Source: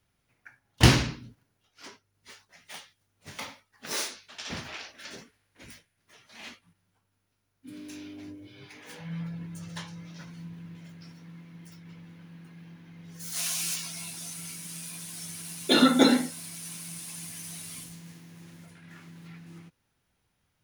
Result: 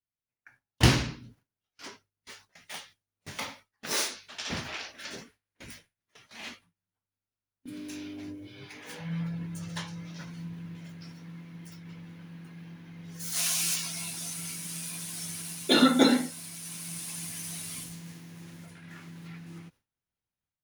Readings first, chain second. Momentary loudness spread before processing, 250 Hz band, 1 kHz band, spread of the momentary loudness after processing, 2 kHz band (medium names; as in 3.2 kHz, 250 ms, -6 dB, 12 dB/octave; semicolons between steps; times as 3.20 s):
26 LU, -1.0 dB, -1.0 dB, 23 LU, -1.0 dB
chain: gate with hold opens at -44 dBFS; level rider gain up to 8 dB; trim -5.5 dB